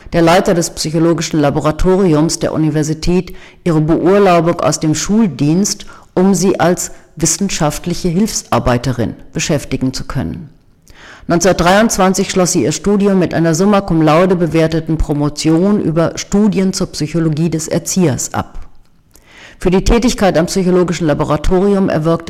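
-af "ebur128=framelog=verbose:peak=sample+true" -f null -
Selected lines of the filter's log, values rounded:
Integrated loudness:
  I:         -13.2 LUFS
  Threshold: -23.5 LUFS
Loudness range:
  LRA:         4.3 LU
  Threshold: -33.7 LUFS
  LRA low:   -16.3 LUFS
  LRA high:  -12.0 LUFS
Sample peak:
  Peak:       -2.4 dBFS
True peak:
  Peak:       -2.4 dBFS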